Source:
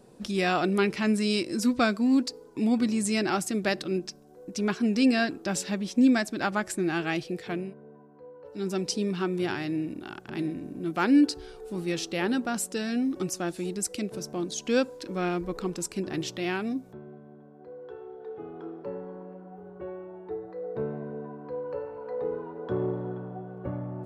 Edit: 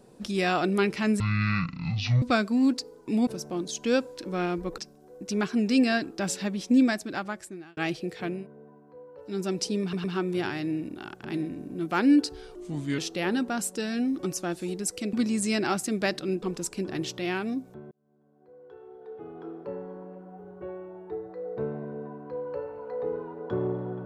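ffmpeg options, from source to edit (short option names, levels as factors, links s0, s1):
-filter_complex "[0:a]asplit=13[s0][s1][s2][s3][s4][s5][s6][s7][s8][s9][s10][s11][s12];[s0]atrim=end=1.204[s13];[s1]atrim=start=1.2:end=1.71,asetpts=PTS-STARTPTS,asetrate=22050,aresample=44100[s14];[s2]atrim=start=1.706:end=2.762[s15];[s3]atrim=start=14.098:end=15.612[s16];[s4]atrim=start=4.048:end=7.04,asetpts=PTS-STARTPTS,afade=t=out:st=2.032:d=0.96[s17];[s5]atrim=start=7.04:end=9.202,asetpts=PTS-STARTPTS,afade=t=in:d=0.004:c=hsin[s18];[s6]atrim=start=9.088:end=9.202[s19];[s7]atrim=start=9.088:end=11.604[s20];[s8]atrim=start=11.6:end=11.95,asetpts=PTS-STARTPTS,asetrate=35721,aresample=44100[s21];[s9]atrim=start=11.946:end=14.102[s22];[s10]atrim=start=2.758:end=4.052[s23];[s11]atrim=start=15.608:end=17.1,asetpts=PTS-STARTPTS,afade=t=out:st=1.488:d=0.004:c=hsin[s24];[s12]atrim=start=17.1,asetpts=PTS-STARTPTS,afade=t=in:d=1.63[s25];[s13][s14]acrossfade=d=0.004:c1=hsin:c2=hsin[s26];[s26][s15]acrossfade=d=0.004:c1=hsin:c2=hsin[s27];[s27][s16]acrossfade=d=0.004:c1=hsin:c2=hsin[s28];[s17][s18]concat=n=2:v=0:a=1[s29];[s28][s29]acrossfade=d=0.004:c1=hsin:c2=hsin[s30];[s30][s19]acrossfade=d=0.004:c1=hsin:c2=hsin[s31];[s31][s20]acrossfade=d=0.004:c1=hsin:c2=hsin[s32];[s32][s21]acrossfade=d=0.004:c1=hsin:c2=hsin[s33];[s33][s22]acrossfade=d=0.004:c1=hsin:c2=hsin[s34];[s34][s23]acrossfade=d=0.004:c1=hsin:c2=hsin[s35];[s24][s25]concat=n=2:v=0:a=1[s36];[s35][s36]acrossfade=d=0.004:c1=hsin:c2=hsin"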